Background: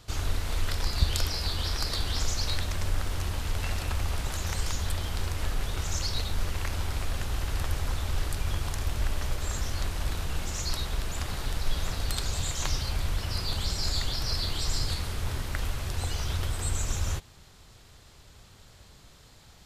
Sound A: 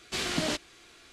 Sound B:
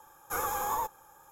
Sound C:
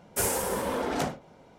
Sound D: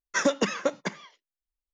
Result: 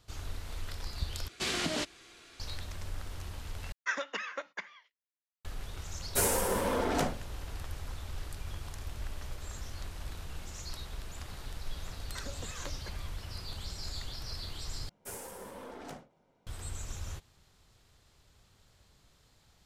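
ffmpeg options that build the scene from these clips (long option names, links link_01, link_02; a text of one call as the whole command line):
ffmpeg -i bed.wav -i cue0.wav -i cue1.wav -i cue2.wav -i cue3.wav -filter_complex "[4:a]asplit=2[link_01][link_02];[3:a]asplit=2[link_03][link_04];[0:a]volume=-11dB[link_05];[1:a]alimiter=limit=-20dB:level=0:latency=1:release=285[link_06];[link_01]bandpass=frequency=1900:width_type=q:width=1.2:csg=0[link_07];[link_03]bandreject=frequency=810:width=26[link_08];[link_02]acompressor=threshold=-36dB:ratio=6:attack=3.2:release=140:knee=1:detection=peak[link_09];[link_04]aeval=exprs='if(lt(val(0),0),0.708*val(0),val(0))':channel_layout=same[link_10];[link_05]asplit=4[link_11][link_12][link_13][link_14];[link_11]atrim=end=1.284[link_15];[link_06]atrim=end=1.12,asetpts=PTS-STARTPTS,volume=-0.5dB[link_16];[link_12]atrim=start=2.396:end=3.724[link_17];[link_07]atrim=end=1.73,asetpts=PTS-STARTPTS,volume=-3.5dB[link_18];[link_13]atrim=start=5.446:end=14.894[link_19];[link_10]atrim=end=1.58,asetpts=PTS-STARTPTS,volume=-15dB[link_20];[link_14]atrim=start=16.466[link_21];[link_08]atrim=end=1.58,asetpts=PTS-STARTPTS,volume=-1dB,afade=type=in:duration=0.004:curve=hsin,afade=type=out:start_time=1.576:duration=0.004:curve=hsin,adelay=5990[link_22];[link_09]atrim=end=1.73,asetpts=PTS-STARTPTS,volume=-7dB,afade=type=in:duration=0.004:curve=hsin,afade=type=out:start_time=1.726:duration=0.004:curve=hsin,adelay=12010[link_23];[link_15][link_16]acrossfade=duration=0.004:curve1=hsin:curve2=hsin[link_24];[link_24][link_17]acrossfade=duration=0.004:curve1=hsin:curve2=hsin[link_25];[link_25][link_18]acrossfade=duration=0.004:curve1=hsin:curve2=hsin[link_26];[link_26][link_19]acrossfade=duration=0.004:curve1=hsin:curve2=hsin[link_27];[link_27][link_20]acrossfade=duration=0.004:curve1=hsin:curve2=hsin[link_28];[link_28][link_21]acrossfade=duration=0.004:curve1=hsin:curve2=hsin[link_29];[link_29][link_22][link_23]amix=inputs=3:normalize=0" out.wav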